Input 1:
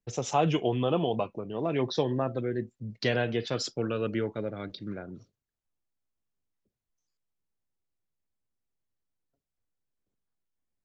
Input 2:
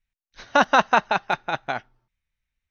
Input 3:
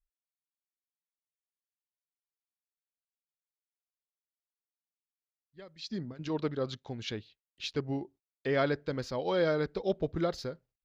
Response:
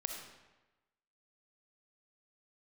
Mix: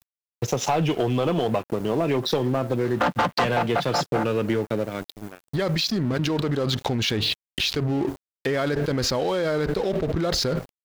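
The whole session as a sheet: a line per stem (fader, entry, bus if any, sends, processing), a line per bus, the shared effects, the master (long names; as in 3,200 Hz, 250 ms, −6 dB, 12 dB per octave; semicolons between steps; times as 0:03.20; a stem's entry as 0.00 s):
+2.0 dB, 0.35 s, no send, low-pass filter 6,500 Hz 12 dB per octave; automatic ducking −15 dB, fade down 0.85 s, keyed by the third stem
+0.5 dB, 2.45 s, no send, channel vocoder with a chord as carrier major triad, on A#2; low-pass filter 2,500 Hz 6 dB per octave; low-shelf EQ 260 Hz −9.5 dB
−7.5 dB, 0.00 s, no send, envelope flattener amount 100%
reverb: not used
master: leveller curve on the samples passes 3; centre clipping without the shift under −45.5 dBFS; downward compressor, threshold −20 dBFS, peak gain reduction 10 dB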